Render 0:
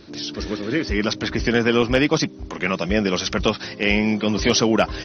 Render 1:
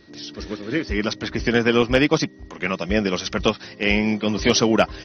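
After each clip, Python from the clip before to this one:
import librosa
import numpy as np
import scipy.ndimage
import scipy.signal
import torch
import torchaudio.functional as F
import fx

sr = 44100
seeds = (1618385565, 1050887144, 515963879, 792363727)

y = x + 10.0 ** (-51.0 / 20.0) * np.sin(2.0 * np.pi * 1900.0 * np.arange(len(x)) / sr)
y = fx.upward_expand(y, sr, threshold_db=-30.0, expansion=1.5)
y = y * librosa.db_to_amplitude(1.5)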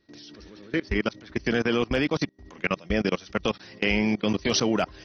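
y = fx.level_steps(x, sr, step_db=23)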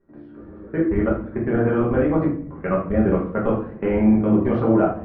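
y = scipy.signal.sosfilt(scipy.signal.butter(4, 1400.0, 'lowpass', fs=sr, output='sos'), x)
y = fx.room_shoebox(y, sr, seeds[0], volume_m3=77.0, walls='mixed', distance_m=1.2)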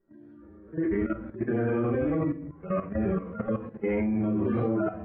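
y = fx.hpss_only(x, sr, part='harmonic')
y = fx.dynamic_eq(y, sr, hz=2200.0, q=1.7, threshold_db=-50.0, ratio=4.0, max_db=6)
y = fx.level_steps(y, sr, step_db=12)
y = y * librosa.db_to_amplitude(-2.0)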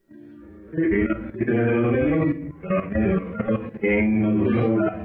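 y = fx.high_shelf_res(x, sr, hz=1700.0, db=7.5, q=1.5)
y = y * librosa.db_to_amplitude(6.5)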